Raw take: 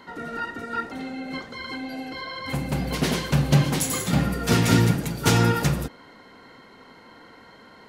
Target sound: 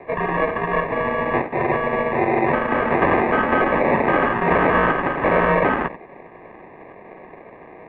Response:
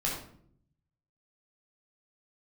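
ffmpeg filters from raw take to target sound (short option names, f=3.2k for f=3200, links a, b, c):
-filter_complex "[0:a]agate=range=-8dB:threshold=-38dB:ratio=16:detection=peak,asplit=2[a][b];[b]acompressor=threshold=-30dB:ratio=6,volume=-2.5dB[c];[a][c]amix=inputs=2:normalize=0,acrusher=samples=26:mix=1:aa=0.000001,highpass=f=590:t=q:w=0.5412,highpass=f=590:t=q:w=1.307,lowpass=f=2.4k:t=q:w=0.5176,lowpass=f=2.4k:t=q:w=0.7071,lowpass=f=2.4k:t=q:w=1.932,afreqshift=-290,alimiter=level_in=22dB:limit=-1dB:release=50:level=0:latency=1,volume=-6.5dB"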